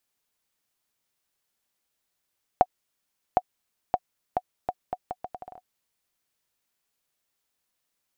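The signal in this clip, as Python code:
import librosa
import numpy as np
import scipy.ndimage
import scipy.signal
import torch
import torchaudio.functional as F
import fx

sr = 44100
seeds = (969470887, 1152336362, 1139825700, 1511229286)

y = fx.bouncing_ball(sr, first_gap_s=0.76, ratio=0.75, hz=733.0, decay_ms=48.0, level_db=-5.5)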